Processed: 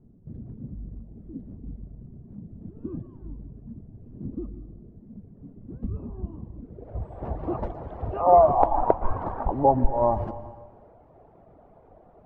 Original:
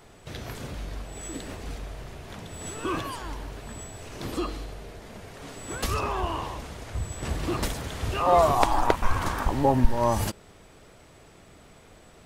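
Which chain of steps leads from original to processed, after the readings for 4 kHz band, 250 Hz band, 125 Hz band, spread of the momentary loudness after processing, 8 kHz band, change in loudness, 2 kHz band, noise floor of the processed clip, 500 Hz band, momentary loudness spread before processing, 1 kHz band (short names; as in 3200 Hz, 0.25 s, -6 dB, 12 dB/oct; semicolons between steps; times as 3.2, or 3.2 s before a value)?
under -30 dB, -1.5 dB, -2.0 dB, 22 LU, under -40 dB, +3.0 dB, under -15 dB, -54 dBFS, +3.0 dB, 18 LU, +2.0 dB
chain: reverb removal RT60 0.78 s; low-pass sweep 220 Hz -> 750 Hz, 6.52–7.03; plate-style reverb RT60 1.4 s, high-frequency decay 0.85×, pre-delay 0.105 s, DRR 12 dB; gain -1.5 dB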